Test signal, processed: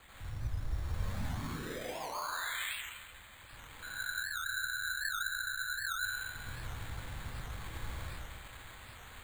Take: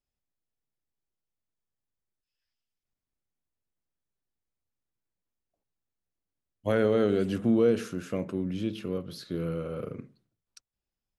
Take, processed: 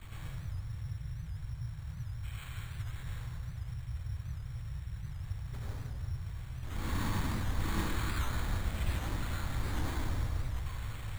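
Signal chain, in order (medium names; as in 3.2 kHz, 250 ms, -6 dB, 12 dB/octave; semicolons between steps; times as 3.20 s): one-bit comparator; FFT filter 120 Hz 0 dB, 610 Hz -22 dB, 1.8 kHz -13 dB; in parallel at -2 dB: compressor with a negative ratio -48 dBFS, ratio -1; on the sum: whisper effect; on a send: feedback echo behind a high-pass 364 ms, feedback 68%, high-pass 1.8 kHz, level -18 dB; on the sum: plate-style reverb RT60 1.7 s, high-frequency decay 0.6×, pre-delay 75 ms, DRR -6.5 dB; mistuned SSB -240 Hz 160–3200 Hz; careless resampling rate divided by 8×, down filtered, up hold; warped record 78 rpm, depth 160 cents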